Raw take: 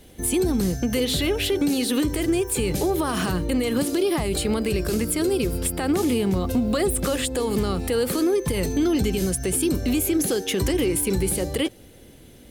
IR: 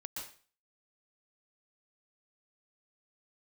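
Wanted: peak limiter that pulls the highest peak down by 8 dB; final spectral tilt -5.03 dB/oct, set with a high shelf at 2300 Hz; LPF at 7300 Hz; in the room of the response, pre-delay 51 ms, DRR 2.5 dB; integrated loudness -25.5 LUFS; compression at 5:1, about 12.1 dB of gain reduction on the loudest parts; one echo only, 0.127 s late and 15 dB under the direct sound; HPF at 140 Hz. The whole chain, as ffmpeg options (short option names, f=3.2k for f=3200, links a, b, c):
-filter_complex "[0:a]highpass=140,lowpass=7.3k,highshelf=f=2.3k:g=-5.5,acompressor=threshold=-33dB:ratio=5,alimiter=level_in=5.5dB:limit=-24dB:level=0:latency=1,volume=-5.5dB,aecho=1:1:127:0.178,asplit=2[a][b];[1:a]atrim=start_sample=2205,adelay=51[c];[b][c]afir=irnorm=-1:irlink=0,volume=-1dB[d];[a][d]amix=inputs=2:normalize=0,volume=10dB"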